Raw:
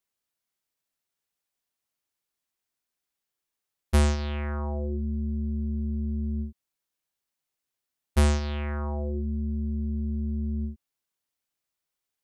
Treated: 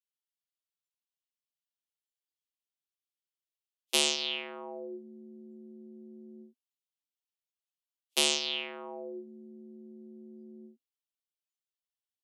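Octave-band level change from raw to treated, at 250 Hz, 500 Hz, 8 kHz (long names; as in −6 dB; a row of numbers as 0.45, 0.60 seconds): −14.0, −4.0, +8.0 decibels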